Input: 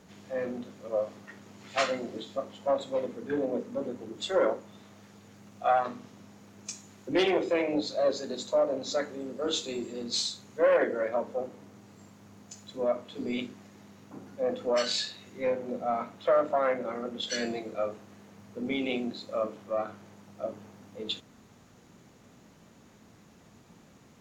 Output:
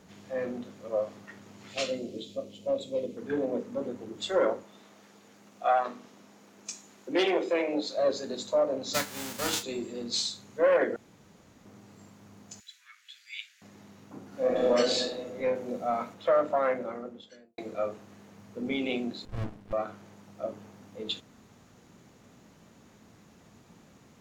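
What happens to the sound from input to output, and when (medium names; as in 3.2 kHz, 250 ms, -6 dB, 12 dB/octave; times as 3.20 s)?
1.74–3.17 s: high-order bell 1.2 kHz -14.5 dB
4.63–7.98 s: high-pass 250 Hz
8.93–9.62 s: formants flattened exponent 0.3
10.96–11.65 s: room tone
12.60–13.62 s: steep high-pass 1.6 kHz 48 dB/octave
14.27–14.69 s: reverb throw, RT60 2.4 s, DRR -7 dB
15.55–16.14 s: treble shelf 4.1 kHz +7 dB
16.64–17.58 s: studio fade out
19.25–19.73 s: sliding maximum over 65 samples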